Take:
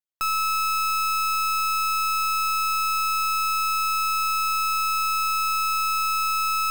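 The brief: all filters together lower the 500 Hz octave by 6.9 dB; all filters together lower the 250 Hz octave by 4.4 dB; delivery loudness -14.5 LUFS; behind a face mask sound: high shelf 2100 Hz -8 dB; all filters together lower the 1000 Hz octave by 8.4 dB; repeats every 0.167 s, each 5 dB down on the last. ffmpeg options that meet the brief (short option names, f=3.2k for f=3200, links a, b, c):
-af "equalizer=f=250:t=o:g=-5,equalizer=f=500:t=o:g=-4.5,equalizer=f=1k:t=o:g=-9,highshelf=f=2.1k:g=-8,aecho=1:1:167|334|501|668|835|1002|1169:0.562|0.315|0.176|0.0988|0.0553|0.031|0.0173,volume=13dB"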